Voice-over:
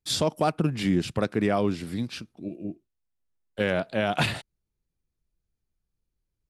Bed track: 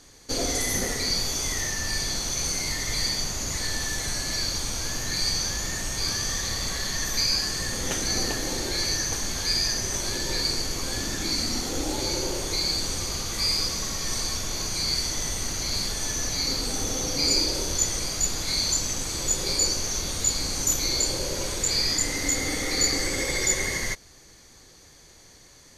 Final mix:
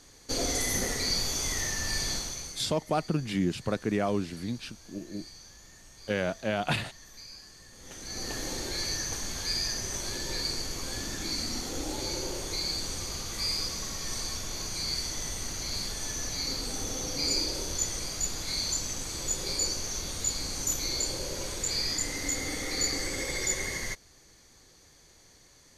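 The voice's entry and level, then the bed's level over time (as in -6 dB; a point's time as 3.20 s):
2.50 s, -4.0 dB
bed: 2.14 s -3 dB
2.79 s -23 dB
7.71 s -23 dB
8.38 s -6 dB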